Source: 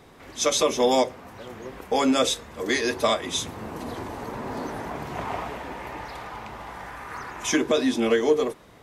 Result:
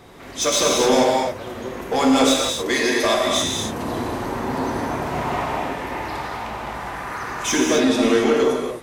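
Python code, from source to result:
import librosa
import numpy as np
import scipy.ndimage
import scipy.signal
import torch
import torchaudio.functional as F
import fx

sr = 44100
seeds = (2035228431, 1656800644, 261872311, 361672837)

y = fx.bessel_highpass(x, sr, hz=270.0, order=2, at=(2.62, 3.26))
y = 10.0 ** (-19.5 / 20.0) * np.tanh(y / 10.0 ** (-19.5 / 20.0))
y = fx.rev_gated(y, sr, seeds[0], gate_ms=300, shape='flat', drr_db=-1.5)
y = F.gain(torch.from_numpy(y), 4.5).numpy()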